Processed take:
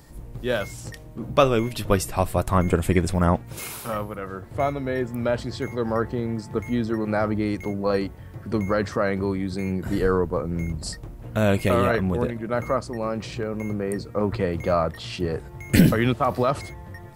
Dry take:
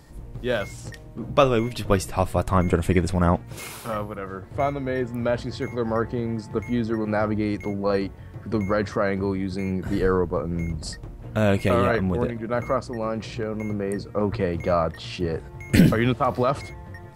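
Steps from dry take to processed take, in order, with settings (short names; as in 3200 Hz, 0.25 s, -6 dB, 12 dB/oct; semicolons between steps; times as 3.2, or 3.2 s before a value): high shelf 11000 Hz +10.5 dB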